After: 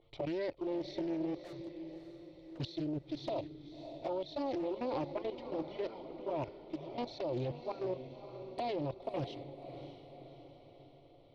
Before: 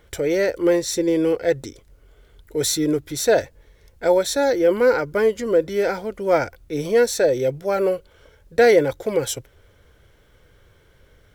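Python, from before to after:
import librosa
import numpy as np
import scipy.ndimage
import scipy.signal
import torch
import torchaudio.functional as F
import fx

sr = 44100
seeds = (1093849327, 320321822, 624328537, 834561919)

y = scipy.signal.sosfilt(scipy.signal.butter(8, 4400.0, 'lowpass', fs=sr, output='sos'), x)
y = fx.notch(y, sr, hz=1700.0, q=8.1)
y = fx.env_flanger(y, sr, rest_ms=9.4, full_db=-14.0)
y = fx.transient(y, sr, attack_db=-3, sustain_db=6, at=(6.6, 7.01))
y = y + 10.0 ** (-39.0 / 20.0) * np.sin(2.0 * np.pi * 460.0 * np.arange(len(y)) / sr)
y = fx.fixed_phaser(y, sr, hz=310.0, stages=8)
y = fx.tube_stage(y, sr, drive_db=46.0, bias=0.45, at=(1.39, 2.58))
y = fx.level_steps(y, sr, step_db=16)
y = fx.echo_diffused(y, sr, ms=596, feedback_pct=52, wet_db=-10.0)
y = fx.doppler_dist(y, sr, depth_ms=0.42)
y = F.gain(torch.from_numpy(y), -3.5).numpy()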